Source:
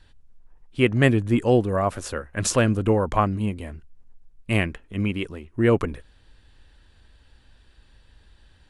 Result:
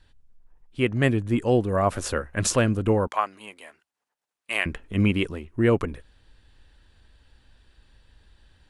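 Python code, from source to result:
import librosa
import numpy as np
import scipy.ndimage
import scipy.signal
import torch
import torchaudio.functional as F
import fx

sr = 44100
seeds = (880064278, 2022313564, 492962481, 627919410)

y = fx.highpass(x, sr, hz=830.0, slope=12, at=(3.07, 4.66))
y = fx.rider(y, sr, range_db=4, speed_s=0.5)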